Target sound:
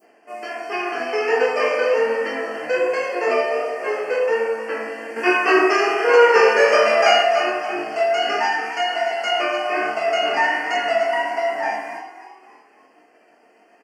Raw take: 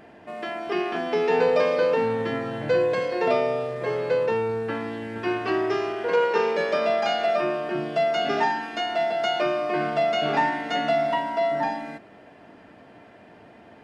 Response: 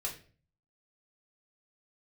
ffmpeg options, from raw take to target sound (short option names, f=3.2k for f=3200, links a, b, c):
-filter_complex "[0:a]flanger=delay=18.5:depth=7:speed=1.3,agate=range=-33dB:threshold=-39dB:ratio=3:detection=peak,acompressor=mode=upward:threshold=-44dB:ratio=2.5,highshelf=f=5.3k:g=5,asettb=1/sr,asplit=3[a][b][c];[a]atrim=end=5.164[d];[b]atrim=start=5.16:end=7.23,asetpts=PTS-STARTPTS,afade=t=in:d=0.004:c=qsin,afade=t=out:st=2.066:d=0.004:c=qsin,acontrast=62[e];[c]atrim=start=7.226[f];[d][e]acrossfade=d=0.004:c1=hsin:c2=qsin[g];[g][f]acrossfade=d=0.004:c1=qsin:c2=hsin,highpass=f=270:w=0.5412,highpass=f=270:w=1.3066,asplit=5[h][i][j][k][l];[i]adelay=289,afreqshift=45,volume=-12dB[m];[j]adelay=578,afreqshift=90,volume=-19.1dB[n];[k]adelay=867,afreqshift=135,volume=-26.3dB[o];[l]adelay=1156,afreqshift=180,volume=-33.4dB[p];[h][m][n][o][p]amix=inputs=5:normalize=0,asplit=2[q][r];[1:a]atrim=start_sample=2205,highshelf=f=3.2k:g=11.5[s];[r][s]afir=irnorm=-1:irlink=0,volume=-2.5dB[t];[q][t]amix=inputs=2:normalize=0,adynamicequalizer=threshold=0.0178:dfrequency=1800:dqfactor=1.1:tfrequency=1800:tqfactor=1.1:attack=5:release=100:ratio=0.375:range=3:mode=boostabove:tftype=bell,asuperstop=centerf=3700:order=8:qfactor=2.8,volume=-1dB"